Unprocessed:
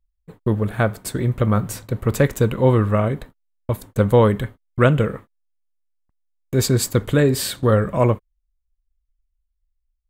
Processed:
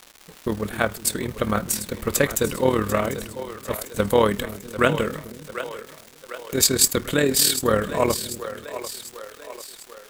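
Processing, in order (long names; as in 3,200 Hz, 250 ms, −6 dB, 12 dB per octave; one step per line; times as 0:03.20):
high-shelf EQ 2,100 Hz +12 dB
on a send: echo with a time of its own for lows and highs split 370 Hz, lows 252 ms, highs 745 ms, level −11.5 dB
on the sum: surface crackle 460 per second −29 dBFS
amplitude modulation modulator 38 Hz, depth 40%
parametric band 120 Hz −12.5 dB 0.6 octaves
level −1 dB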